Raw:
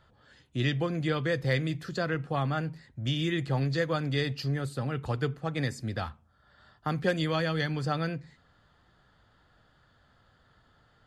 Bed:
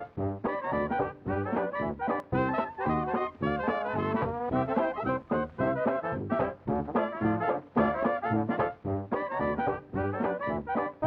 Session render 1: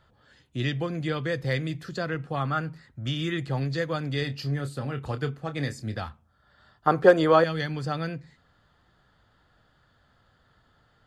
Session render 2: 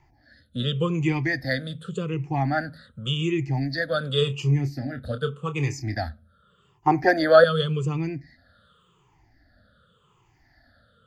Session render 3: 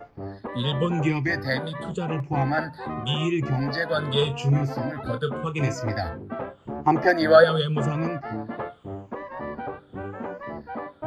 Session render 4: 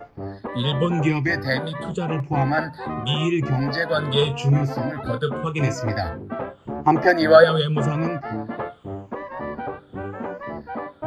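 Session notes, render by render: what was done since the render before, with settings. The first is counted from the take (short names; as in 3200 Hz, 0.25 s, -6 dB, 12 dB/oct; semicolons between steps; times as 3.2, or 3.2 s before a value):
2.4–3.38 bell 1300 Hz +9 dB 0.45 oct; 4.19–5.97 doubler 28 ms -10 dB; 6.87–7.44 band shelf 700 Hz +13 dB 2.5 oct
moving spectral ripple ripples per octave 0.72, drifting -0.87 Hz, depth 24 dB; rotary speaker horn 0.65 Hz
add bed -4 dB
gain +3 dB; limiter -1 dBFS, peak gain reduction 1.5 dB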